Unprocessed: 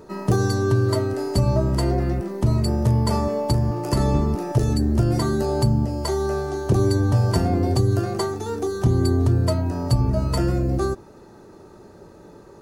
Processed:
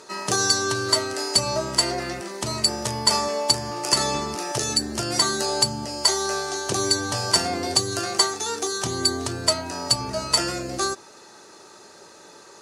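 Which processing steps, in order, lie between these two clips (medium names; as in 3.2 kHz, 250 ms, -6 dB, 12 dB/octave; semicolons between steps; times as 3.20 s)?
frequency weighting ITU-R 468; trim +3 dB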